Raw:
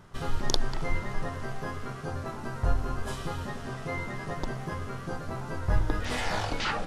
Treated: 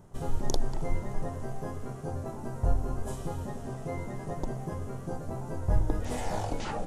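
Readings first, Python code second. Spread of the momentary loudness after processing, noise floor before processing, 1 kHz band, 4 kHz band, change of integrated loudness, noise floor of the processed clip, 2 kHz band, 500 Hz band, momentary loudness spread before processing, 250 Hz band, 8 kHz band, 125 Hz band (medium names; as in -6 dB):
7 LU, -39 dBFS, -3.5 dB, -11.0 dB, -1.5 dB, -40 dBFS, -11.5 dB, 0.0 dB, 7 LU, 0.0 dB, -2.5 dB, 0.0 dB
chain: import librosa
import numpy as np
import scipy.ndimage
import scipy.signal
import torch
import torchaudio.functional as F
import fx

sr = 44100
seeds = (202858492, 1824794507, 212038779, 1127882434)

y = fx.band_shelf(x, sr, hz=2400.0, db=-11.5, octaves=2.5)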